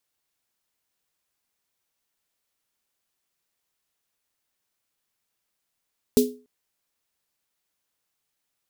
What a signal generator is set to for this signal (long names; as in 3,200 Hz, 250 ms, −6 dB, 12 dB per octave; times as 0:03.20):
synth snare length 0.29 s, tones 250 Hz, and 420 Hz, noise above 3,400 Hz, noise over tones −9.5 dB, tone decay 0.34 s, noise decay 0.24 s